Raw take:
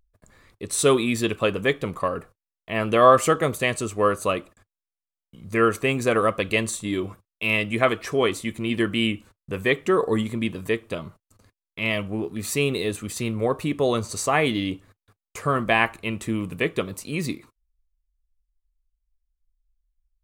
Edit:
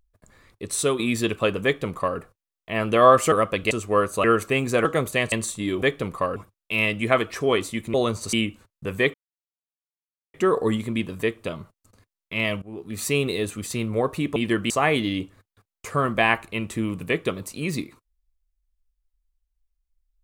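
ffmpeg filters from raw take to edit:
ffmpeg -i in.wav -filter_complex "[0:a]asplit=15[link_01][link_02][link_03][link_04][link_05][link_06][link_07][link_08][link_09][link_10][link_11][link_12][link_13][link_14][link_15];[link_01]atrim=end=0.99,asetpts=PTS-STARTPTS,afade=type=out:start_time=0.71:duration=0.28:silence=0.354813[link_16];[link_02]atrim=start=0.99:end=3.322,asetpts=PTS-STARTPTS,afade=type=in:duration=0.004:curve=hsin:silence=0.354813[link_17];[link_03]atrim=start=6.178:end=6.572[link_18];[link_04]atrim=start=3.788:end=4.322[link_19];[link_05]atrim=start=5.568:end=6.182[link_20];[link_06]atrim=start=3.318:end=3.792[link_21];[link_07]atrim=start=6.568:end=7.072[link_22];[link_08]atrim=start=1.638:end=2.182[link_23];[link_09]atrim=start=7.068:end=8.652[link_24];[link_10]atrim=start=13.818:end=14.212[link_25];[link_11]atrim=start=8.988:end=9.8,asetpts=PTS-STARTPTS,afade=type=out:start_time=0.808:duration=0.004:curve=hsin,apad=pad_dur=1.2[link_26];[link_12]atrim=start=9.8:end=12.08,asetpts=PTS-STARTPTS,afade=type=in:duration=0.004:curve=hsin,afade=type=out:start_time=2.276:duration=0.004:curve=hsin:silence=0.0944061[link_27];[link_13]atrim=start=12.08:end=13.822,asetpts=PTS-STARTPTS,afade=type=in:duration=0.41:silence=0.0944061[link_28];[link_14]atrim=start=8.648:end=8.992[link_29];[link_15]atrim=start=14.208[link_30];[link_16][link_17]concat=n=2:v=0:a=1[link_31];[link_31][link_18]acrossfade=duration=0.004:curve1=hsin:curve2=hsin[link_32];[link_32][link_19]acrossfade=duration=0.004:curve1=hsin:curve2=hsin[link_33];[link_33][link_20]acrossfade=duration=0.004:curve1=hsin:curve2=hsin[link_34];[link_34][link_21]acrossfade=duration=0.004:curve1=hsin:curve2=hsin[link_35];[link_35][link_22]acrossfade=duration=0.004:curve1=hsin:curve2=hsin[link_36];[link_36][link_23]acrossfade=duration=0.004:curve1=hsin:curve2=hsin[link_37];[link_37][link_24]acrossfade=duration=0.004:curve1=hsin:curve2=hsin[link_38];[link_38][link_25]acrossfade=duration=0.004:curve1=hsin:curve2=hsin[link_39];[link_26][link_27][link_28]concat=n=3:v=0:a=1[link_40];[link_39][link_40]acrossfade=duration=0.004:curve1=hsin:curve2=hsin[link_41];[link_41][link_29]acrossfade=duration=0.004:curve1=hsin:curve2=hsin[link_42];[link_42][link_30]acrossfade=duration=0.004:curve1=hsin:curve2=hsin" out.wav

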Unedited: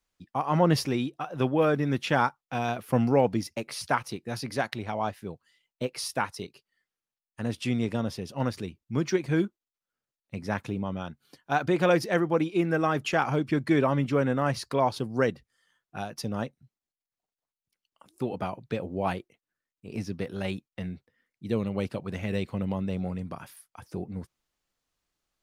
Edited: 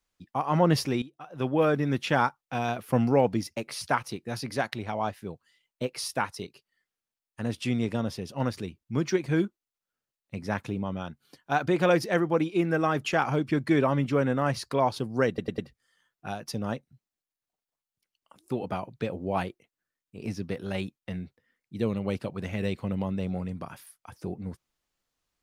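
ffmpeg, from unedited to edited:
ffmpeg -i in.wav -filter_complex "[0:a]asplit=5[link_01][link_02][link_03][link_04][link_05];[link_01]atrim=end=1.02,asetpts=PTS-STARTPTS,afade=type=out:start_time=1.016:duration=0.004:curve=hsin:silence=0.188365[link_06];[link_02]atrim=start=1.02:end=15.382,asetpts=PTS-STARTPTS,afade=type=in:duration=0.53:curve=qua:silence=0.188365[link_07];[link_03]atrim=start=15.278:end=15.382[link_08];[link_04]atrim=start=15.278:end=15.382[link_09];[link_05]atrim=start=15.278[link_10];[link_06][link_07]concat=n=2:v=0:a=1[link_11];[link_11][link_08]acrossfade=duration=0.004:curve1=hsin:curve2=hsin[link_12];[link_12][link_09]acrossfade=duration=0.004:curve1=hsin:curve2=hsin[link_13];[link_13][link_10]acrossfade=duration=0.004:curve1=hsin:curve2=hsin" out.wav

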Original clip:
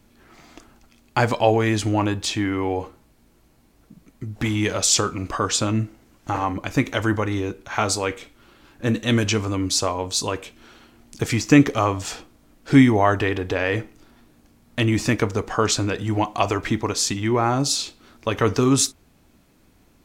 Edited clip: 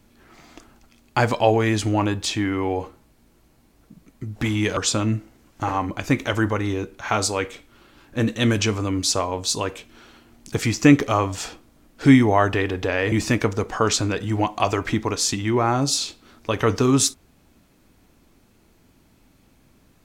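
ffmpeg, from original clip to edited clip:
ffmpeg -i in.wav -filter_complex "[0:a]asplit=3[link_01][link_02][link_03];[link_01]atrim=end=4.772[link_04];[link_02]atrim=start=5.438:end=13.792[link_05];[link_03]atrim=start=14.898[link_06];[link_04][link_05]acrossfade=duration=0.004:curve1=hsin:curve2=hsin[link_07];[link_07][link_06]acrossfade=duration=0.004:curve1=hsin:curve2=hsin" out.wav

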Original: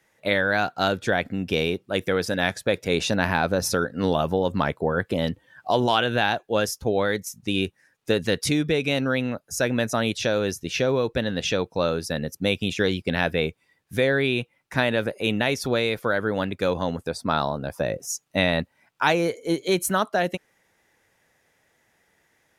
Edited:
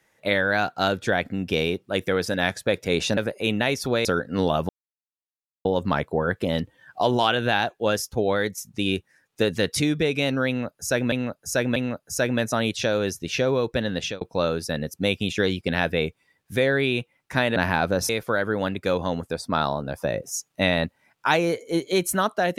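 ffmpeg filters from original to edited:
ffmpeg -i in.wav -filter_complex "[0:a]asplit=9[link_01][link_02][link_03][link_04][link_05][link_06][link_07][link_08][link_09];[link_01]atrim=end=3.172[link_10];[link_02]atrim=start=14.968:end=15.852[link_11];[link_03]atrim=start=3.698:end=4.34,asetpts=PTS-STARTPTS,afade=type=out:start_time=0.638:duration=0.004:curve=hsin,apad=pad_dur=0.96[link_12];[link_04]atrim=start=4.34:end=9.812,asetpts=PTS-STARTPTS,afade=type=in:duration=0.004:curve=hsin[link_13];[link_05]atrim=start=9.168:end=9.812[link_14];[link_06]atrim=start=9.168:end=11.62,asetpts=PTS-STARTPTS,afade=type=out:start_time=2.162:duration=0.29:curve=qsin[link_15];[link_07]atrim=start=11.62:end=14.972,asetpts=PTS-STARTPTS,afade=type=in:duration=0.004:curve=hsin[link_16];[link_08]atrim=start=3.168:end=3.702[link_17];[link_09]atrim=start=15.848[link_18];[link_10][link_11]acrossfade=duration=0.004:curve1=hsin:curve2=hsin[link_19];[link_12][link_13]concat=n=2:v=0:a=1[link_20];[link_19][link_20]acrossfade=duration=0.004:curve1=hsin:curve2=hsin[link_21];[link_21][link_14]acrossfade=duration=0.004:curve1=hsin:curve2=hsin[link_22];[link_15][link_16]concat=n=2:v=0:a=1[link_23];[link_22][link_23]acrossfade=duration=0.004:curve1=hsin:curve2=hsin[link_24];[link_24][link_17]acrossfade=duration=0.004:curve1=hsin:curve2=hsin[link_25];[link_25][link_18]acrossfade=duration=0.004:curve1=hsin:curve2=hsin" out.wav

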